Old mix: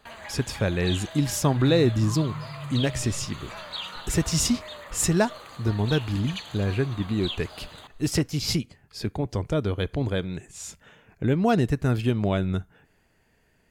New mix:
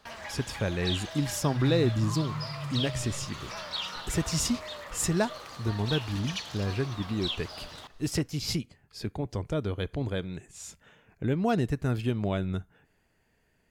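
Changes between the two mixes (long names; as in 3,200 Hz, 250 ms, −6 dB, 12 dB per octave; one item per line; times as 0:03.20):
speech −5.0 dB
background: remove Butterworth band-reject 5,400 Hz, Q 3.2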